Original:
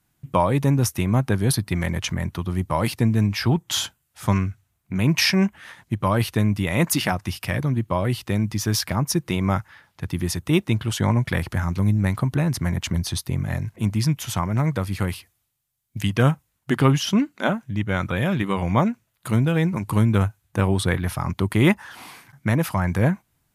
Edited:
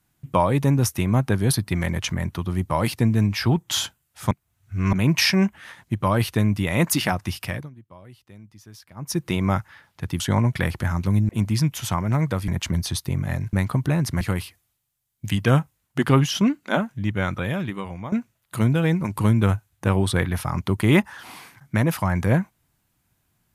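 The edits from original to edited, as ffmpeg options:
-filter_complex "[0:a]asplit=11[a][b][c][d][e][f][g][h][i][j][k];[a]atrim=end=4.312[l];[b]atrim=start=4.308:end=4.932,asetpts=PTS-STARTPTS,areverse[m];[c]atrim=start=4.928:end=7.7,asetpts=PTS-STARTPTS,afade=t=out:st=2.482:d=0.29:silence=0.0707946[n];[d]atrim=start=7.7:end=8.95,asetpts=PTS-STARTPTS,volume=-23dB[o];[e]atrim=start=8.95:end=10.202,asetpts=PTS-STARTPTS,afade=t=in:d=0.29:silence=0.0707946[p];[f]atrim=start=10.918:end=12.012[q];[g]atrim=start=13.738:end=14.932[r];[h]atrim=start=12.688:end=13.742[s];[i]atrim=start=12.008:end=12.692[t];[j]atrim=start=14.928:end=18.84,asetpts=PTS-STARTPTS,afade=t=out:st=2.952:d=0.96:silence=0.125893[u];[k]atrim=start=18.84,asetpts=PTS-STARTPTS,afade=t=in:d=0.004:c=hsin:silence=0.125893[v];[l][m]acrossfade=d=0.004:c1=hsin:c2=hsin[w];[n][o][p]concat=n=3:v=0:a=1[x];[w][x]acrossfade=d=0.004:c1=hsin:c2=hsin[y];[y][q]acrossfade=d=0.004:c1=hsin:c2=hsin[z];[z][r]acrossfade=d=0.004:c1=hsin:c2=hsin[aa];[aa][s]acrossfade=d=0.004:c1=hsin:c2=hsin[ab];[ab][t]acrossfade=d=0.004:c1=hsin:c2=hsin[ac];[u][v]concat=n=2:v=0:a=1[ad];[ac][ad]acrossfade=d=0.004:c1=hsin:c2=hsin"

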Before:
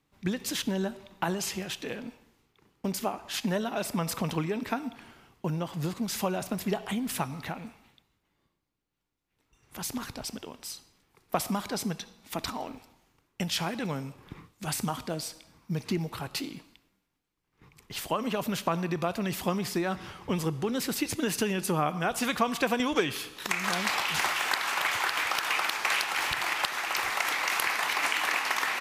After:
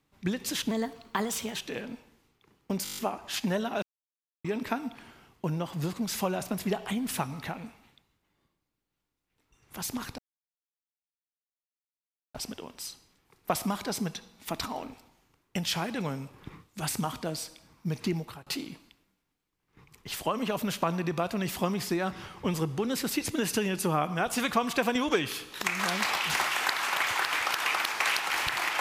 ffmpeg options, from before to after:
-filter_complex "[0:a]asplit=14[a][b][c][d][e][f][g][h][i][j][k][l][m][n];[a]atrim=end=0.714[o];[b]atrim=start=0.71:end=1.71,asetpts=PTS-STARTPTS,asetrate=51597,aresample=44100,atrim=end_sample=37692,asetpts=PTS-STARTPTS[p];[c]atrim=start=1.706:end=3.002[q];[d]atrim=start=2.978:end=3.002[r];[e]atrim=start=2.978:end=3.002[s];[f]atrim=start=2.978:end=3.002[t];[g]atrim=start=2.978:end=3.002[u];[h]atrim=start=2.978:end=3.002[v];[i]atrim=start=2.978:end=3.002[w];[j]atrim=start=2.978:end=3.83,asetpts=PTS-STARTPTS,afade=t=out:st=0.848:d=0.004:c=hsin[x];[k]atrim=start=3.83:end=4.45,asetpts=PTS-STARTPTS,volume=0[y];[l]atrim=start=4.45:end=10.19,asetpts=PTS-STARTPTS,afade=t=in:d=0.004:c=hsin,afade=t=out:st=5.736:d=0.004:c=hsin,apad=pad_dur=2.16[z];[m]atrim=start=10.19:end=16.31,asetpts=PTS-STARTPTS,afade=t=in:d=0.004:c=hsin,afade=t=out:st=5.81:d=0.31:silence=0.0707946[aa];[n]atrim=start=16.31,asetpts=PTS-STARTPTS,afade=t=in:d=0.004:c=hsin:silence=0.0707946[ab];[o][p]acrossfade=d=0.004:c1=hsin:c2=hsin[ac];[ac][q]acrossfade=d=0.004:c1=hsin:c2=hsin[ad];[ad][r]acrossfade=d=0.004:c1=hsin:c2=hsin[ae];[ae][s]acrossfade=d=0.004:c1=hsin:c2=hsin[af];[af][t]acrossfade=d=0.004:c1=hsin:c2=hsin[ag];[ag][u]acrossfade=d=0.004:c1=hsin:c2=hsin[ah];[ah][v]acrossfade=d=0.004:c1=hsin:c2=hsin[ai];[ai][w]acrossfade=d=0.004:c1=hsin:c2=hsin[aj];[x][y][z][aa][ab]concat=n=5:v=0:a=1[ak];[aj][ak]acrossfade=d=0.004:c1=hsin:c2=hsin"

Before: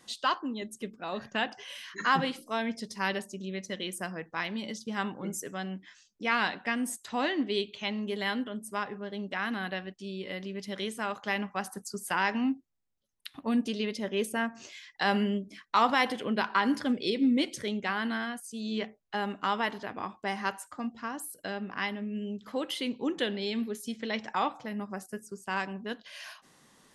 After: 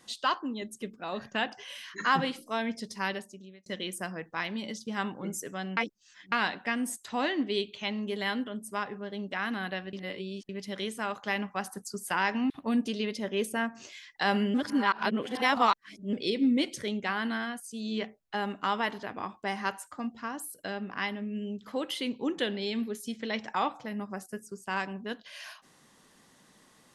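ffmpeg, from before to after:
-filter_complex "[0:a]asplit=9[a][b][c][d][e][f][g][h][i];[a]atrim=end=3.66,asetpts=PTS-STARTPTS,afade=t=out:st=2.95:d=0.71[j];[b]atrim=start=3.66:end=5.772,asetpts=PTS-STARTPTS,afade=t=in:d=0.004:c=hsin[k];[c]atrim=start=5.768:end=6.322,asetpts=PTS-STARTPTS,areverse[l];[d]atrim=start=6.318:end=9.932[m];[e]atrim=start=9.928:end=10.492,asetpts=PTS-STARTPTS,areverse[n];[f]atrim=start=10.488:end=12.502[o];[g]atrim=start=13.298:end=15.342[p];[h]atrim=start=15.338:end=16.932,asetpts=PTS-STARTPTS,areverse[q];[i]atrim=start=16.928[r];[j][k]concat=n=2:v=0:a=1[s];[s][l]acrossfade=d=0.004:c1=hsin:c2=hsin[t];[t][m]acrossfade=d=0.004:c1=hsin:c2=hsin[u];[u][n]acrossfade=d=0.004:c1=hsin:c2=hsin[v];[v][o]acrossfade=d=0.004:c1=hsin:c2=hsin[w];[w][p]acrossfade=d=0.004:c1=hsin:c2=hsin[x];[x][q]acrossfade=d=0.004:c1=hsin:c2=hsin[y];[y][r]acrossfade=d=0.004:c1=hsin:c2=hsin"

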